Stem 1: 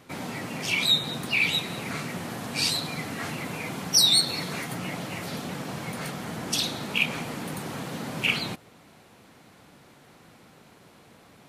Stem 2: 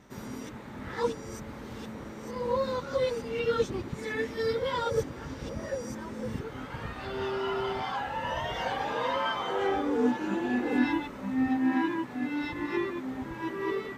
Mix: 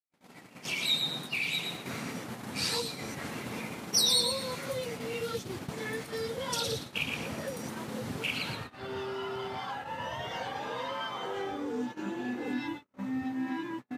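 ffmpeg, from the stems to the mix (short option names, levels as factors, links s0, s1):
-filter_complex "[0:a]highpass=f=160:p=1,volume=0.473,asplit=2[s0][s1];[s1]volume=0.562[s2];[1:a]acompressor=mode=upward:threshold=0.0224:ratio=2.5,adelay=1750,volume=0.841[s3];[s2]aecho=0:1:116|232|348|464:1|0.3|0.09|0.027[s4];[s0][s3][s4]amix=inputs=3:normalize=0,acrossover=split=150|3000[s5][s6][s7];[s6]acompressor=threshold=0.0178:ratio=3[s8];[s5][s8][s7]amix=inputs=3:normalize=0,highpass=f=92:w=0.5412,highpass=f=92:w=1.3066,agate=range=0.00158:threshold=0.0126:ratio=16:detection=peak"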